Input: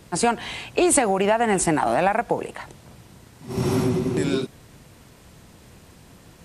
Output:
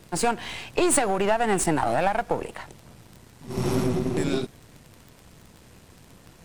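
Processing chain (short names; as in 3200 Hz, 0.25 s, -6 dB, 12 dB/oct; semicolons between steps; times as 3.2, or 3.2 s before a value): half-wave gain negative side -7 dB; crackle 15/s -34 dBFS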